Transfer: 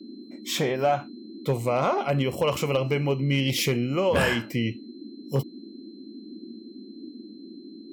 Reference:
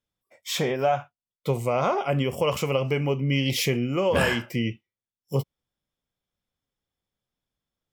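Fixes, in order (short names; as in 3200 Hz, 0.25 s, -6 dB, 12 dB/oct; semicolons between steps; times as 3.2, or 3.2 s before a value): clip repair -14.5 dBFS; notch 4100 Hz, Q 30; noise print and reduce 30 dB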